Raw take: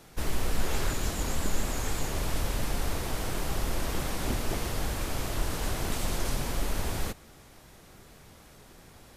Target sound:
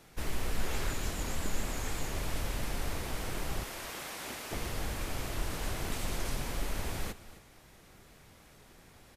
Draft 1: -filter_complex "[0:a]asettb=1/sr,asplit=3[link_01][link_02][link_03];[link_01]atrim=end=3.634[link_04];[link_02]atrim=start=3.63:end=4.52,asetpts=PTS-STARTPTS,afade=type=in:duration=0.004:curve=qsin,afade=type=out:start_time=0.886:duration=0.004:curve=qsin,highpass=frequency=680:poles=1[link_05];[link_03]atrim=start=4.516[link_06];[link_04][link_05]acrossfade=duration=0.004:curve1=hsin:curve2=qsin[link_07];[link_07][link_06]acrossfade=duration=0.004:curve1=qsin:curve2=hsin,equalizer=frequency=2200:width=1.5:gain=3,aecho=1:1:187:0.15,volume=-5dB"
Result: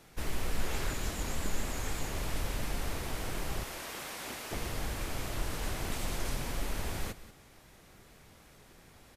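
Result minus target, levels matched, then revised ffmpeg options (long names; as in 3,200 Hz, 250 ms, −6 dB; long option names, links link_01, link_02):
echo 78 ms early
-filter_complex "[0:a]asettb=1/sr,asplit=3[link_01][link_02][link_03];[link_01]atrim=end=3.634[link_04];[link_02]atrim=start=3.63:end=4.52,asetpts=PTS-STARTPTS,afade=type=in:duration=0.004:curve=qsin,afade=type=out:start_time=0.886:duration=0.004:curve=qsin,highpass=frequency=680:poles=1[link_05];[link_03]atrim=start=4.516[link_06];[link_04][link_05]acrossfade=duration=0.004:curve1=hsin:curve2=qsin[link_07];[link_07][link_06]acrossfade=duration=0.004:curve1=qsin:curve2=hsin,equalizer=frequency=2200:width=1.5:gain=3,aecho=1:1:265:0.15,volume=-5dB"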